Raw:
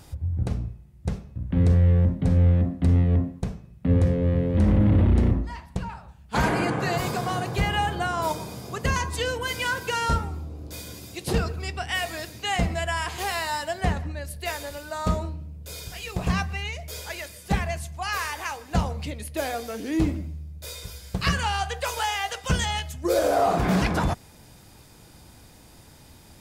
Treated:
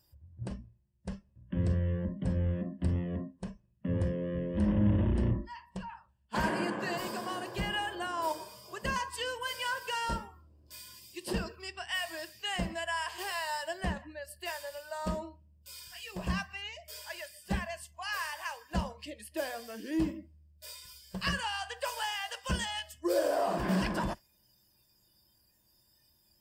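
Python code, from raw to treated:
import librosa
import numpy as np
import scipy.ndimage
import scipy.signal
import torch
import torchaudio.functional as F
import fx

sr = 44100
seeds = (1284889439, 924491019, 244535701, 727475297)

y = fx.ripple_eq(x, sr, per_octave=1.3, db=8)
y = fx.noise_reduce_blind(y, sr, reduce_db=17)
y = y * 10.0 ** (-8.5 / 20.0)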